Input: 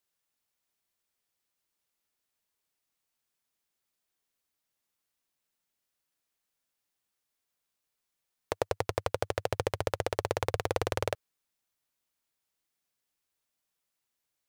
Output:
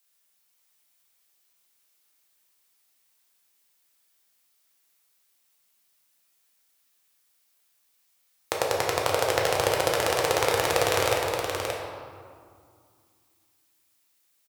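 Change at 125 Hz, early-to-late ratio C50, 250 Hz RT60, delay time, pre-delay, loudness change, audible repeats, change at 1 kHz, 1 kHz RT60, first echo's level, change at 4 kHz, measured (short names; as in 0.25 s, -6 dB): +1.5 dB, -0.5 dB, 3.1 s, 0.575 s, 6 ms, +8.0 dB, 1, +9.5 dB, 2.3 s, -5.5 dB, +13.0 dB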